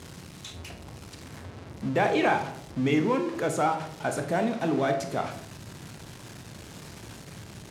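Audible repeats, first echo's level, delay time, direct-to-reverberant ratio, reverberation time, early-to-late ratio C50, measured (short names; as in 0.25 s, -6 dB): none, none, none, 5.0 dB, 0.65 s, 9.5 dB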